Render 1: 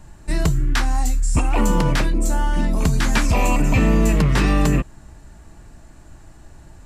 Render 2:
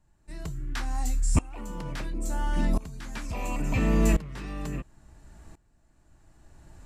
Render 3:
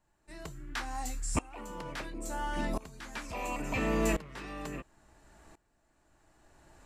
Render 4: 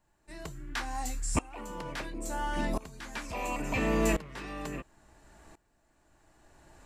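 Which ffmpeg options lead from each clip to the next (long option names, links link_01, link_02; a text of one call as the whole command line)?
ffmpeg -i in.wav -af "aeval=exprs='val(0)*pow(10,-21*if(lt(mod(-0.72*n/s,1),2*abs(-0.72)/1000),1-mod(-0.72*n/s,1)/(2*abs(-0.72)/1000),(mod(-0.72*n/s,1)-2*abs(-0.72)/1000)/(1-2*abs(-0.72)/1000))/20)':channel_layout=same,volume=-3.5dB" out.wav
ffmpeg -i in.wav -af "bass=frequency=250:gain=-12,treble=frequency=4000:gain=-3" out.wav
ffmpeg -i in.wav -af "bandreject=frequency=1300:width=27,volume=2dB" out.wav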